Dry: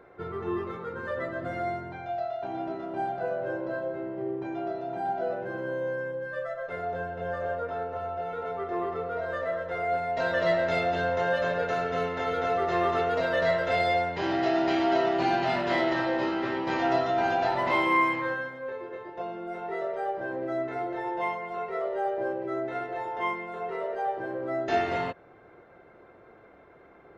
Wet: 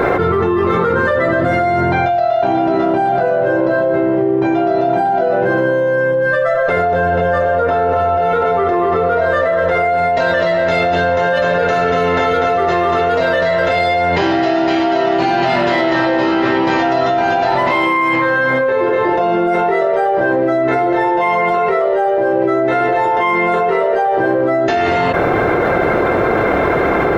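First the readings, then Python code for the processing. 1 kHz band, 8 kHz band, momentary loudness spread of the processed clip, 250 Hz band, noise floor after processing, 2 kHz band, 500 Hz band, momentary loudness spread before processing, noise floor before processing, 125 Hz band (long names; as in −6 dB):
+14.5 dB, can't be measured, 1 LU, +15.5 dB, −15 dBFS, +15.0 dB, +15.5 dB, 9 LU, −54 dBFS, +17.0 dB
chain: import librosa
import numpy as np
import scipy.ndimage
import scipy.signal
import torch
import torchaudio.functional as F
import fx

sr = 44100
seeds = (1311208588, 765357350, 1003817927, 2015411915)

y = fx.env_flatten(x, sr, amount_pct=100)
y = y * 10.0 ** (6.5 / 20.0)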